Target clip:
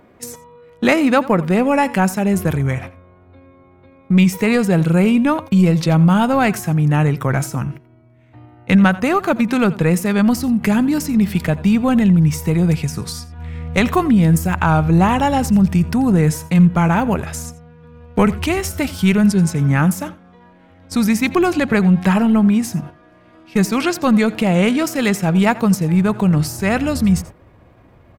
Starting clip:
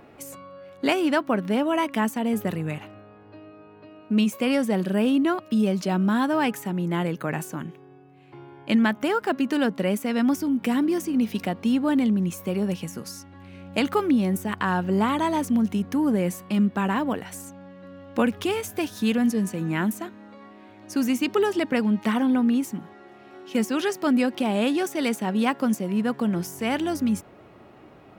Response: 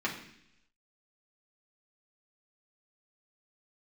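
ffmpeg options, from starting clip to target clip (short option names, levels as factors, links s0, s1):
-filter_complex "[0:a]acontrast=61,asetrate=38170,aresample=44100,atempo=1.15535,asubboost=boost=4.5:cutoff=110,agate=range=0.355:threshold=0.0224:ratio=16:detection=peak,asplit=2[s0][s1];[s1]aecho=0:1:86:0.112[s2];[s0][s2]amix=inputs=2:normalize=0,volume=1.41"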